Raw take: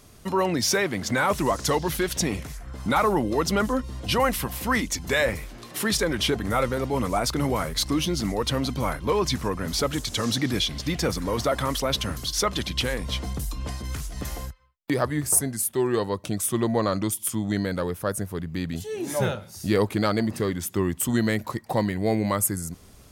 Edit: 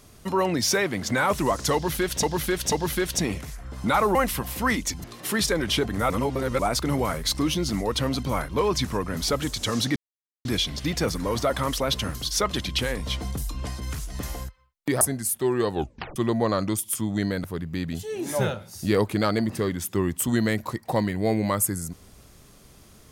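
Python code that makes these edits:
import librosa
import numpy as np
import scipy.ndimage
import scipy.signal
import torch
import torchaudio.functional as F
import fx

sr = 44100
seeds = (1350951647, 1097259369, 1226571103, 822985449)

y = fx.edit(x, sr, fx.repeat(start_s=1.74, length_s=0.49, count=3),
    fx.cut(start_s=3.17, length_s=1.03),
    fx.cut(start_s=5.09, length_s=0.46),
    fx.reverse_span(start_s=6.61, length_s=0.49),
    fx.insert_silence(at_s=10.47, length_s=0.49),
    fx.cut(start_s=15.03, length_s=0.32),
    fx.tape_stop(start_s=16.05, length_s=0.45),
    fx.cut(start_s=17.78, length_s=0.47), tone=tone)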